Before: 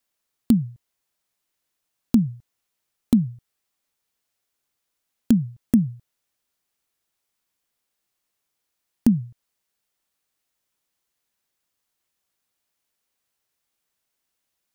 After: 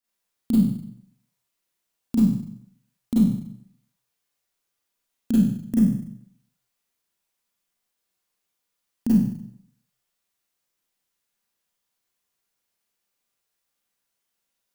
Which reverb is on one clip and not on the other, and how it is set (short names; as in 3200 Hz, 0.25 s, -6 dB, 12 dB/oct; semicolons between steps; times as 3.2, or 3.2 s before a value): Schroeder reverb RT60 0.67 s, combs from 32 ms, DRR -9 dB; gain -10 dB